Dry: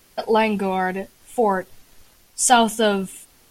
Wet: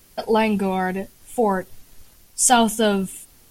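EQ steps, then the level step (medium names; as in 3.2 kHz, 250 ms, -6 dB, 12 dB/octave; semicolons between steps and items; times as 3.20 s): bass shelf 250 Hz +8 dB; treble shelf 6.2 kHz +7 dB; -2.5 dB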